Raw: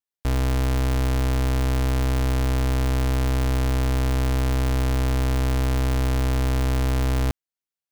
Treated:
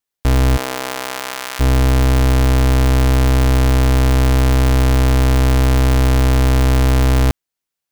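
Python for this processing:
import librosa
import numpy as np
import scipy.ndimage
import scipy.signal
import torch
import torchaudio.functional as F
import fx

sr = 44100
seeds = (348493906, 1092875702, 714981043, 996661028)

y = fx.highpass(x, sr, hz=fx.line((0.56, 410.0), (1.59, 1200.0)), slope=12, at=(0.56, 1.59), fade=0.02)
y = y * librosa.db_to_amplitude(9.0)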